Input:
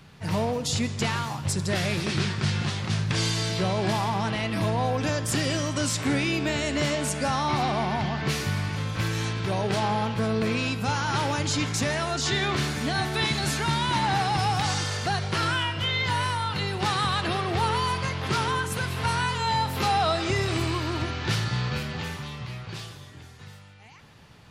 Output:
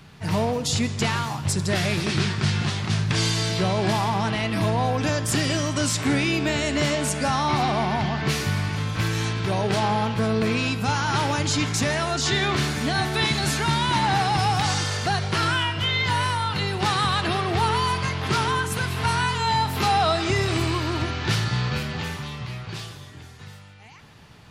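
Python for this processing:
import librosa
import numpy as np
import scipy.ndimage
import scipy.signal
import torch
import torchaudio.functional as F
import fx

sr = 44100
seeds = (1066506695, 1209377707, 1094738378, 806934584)

y = fx.notch(x, sr, hz=530.0, q=15.0)
y = F.gain(torch.from_numpy(y), 3.0).numpy()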